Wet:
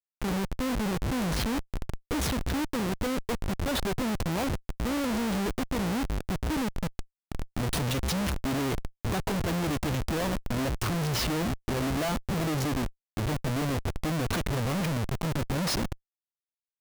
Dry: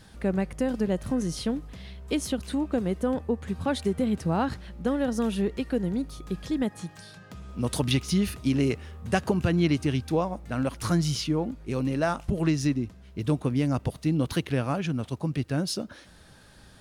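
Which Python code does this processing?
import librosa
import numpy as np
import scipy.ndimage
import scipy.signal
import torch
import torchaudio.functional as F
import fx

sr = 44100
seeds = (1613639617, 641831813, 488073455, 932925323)

y = fx.low_shelf(x, sr, hz=280.0, db=-6.0, at=(2.59, 4.5))
y = fx.schmitt(y, sr, flips_db=-34.5)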